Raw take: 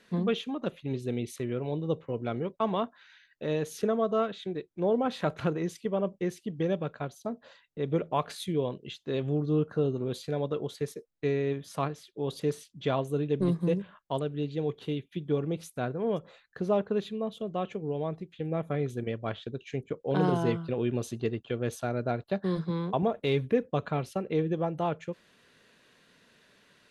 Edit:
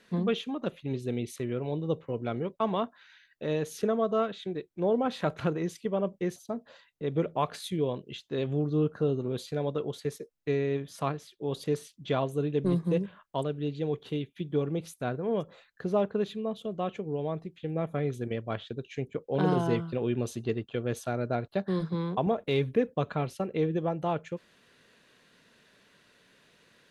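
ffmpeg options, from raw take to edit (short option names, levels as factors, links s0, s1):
-filter_complex "[0:a]asplit=2[s0][s1];[s0]atrim=end=6.362[s2];[s1]atrim=start=7.118[s3];[s2][s3]acrossfade=d=0.004:c1=hsin:c2=hsin"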